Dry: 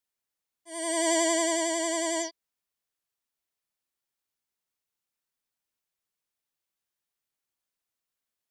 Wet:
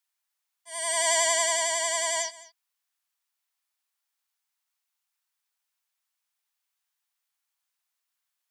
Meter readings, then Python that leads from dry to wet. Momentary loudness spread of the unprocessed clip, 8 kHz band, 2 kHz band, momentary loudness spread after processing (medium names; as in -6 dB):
11 LU, +4.5 dB, +4.5 dB, 11 LU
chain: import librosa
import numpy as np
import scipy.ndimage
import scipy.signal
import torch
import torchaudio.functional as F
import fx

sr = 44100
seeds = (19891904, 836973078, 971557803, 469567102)

p1 = scipy.signal.sosfilt(scipy.signal.butter(4, 770.0, 'highpass', fs=sr, output='sos'), x)
p2 = p1 + fx.echo_single(p1, sr, ms=210, db=-19.5, dry=0)
y = F.gain(torch.from_numpy(p2), 4.5).numpy()